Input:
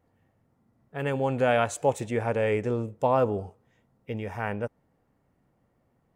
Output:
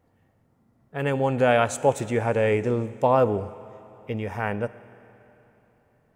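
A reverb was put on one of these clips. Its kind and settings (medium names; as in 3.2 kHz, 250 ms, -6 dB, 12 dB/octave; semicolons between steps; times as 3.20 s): Schroeder reverb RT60 3.3 s, combs from 25 ms, DRR 16.5 dB; trim +3.5 dB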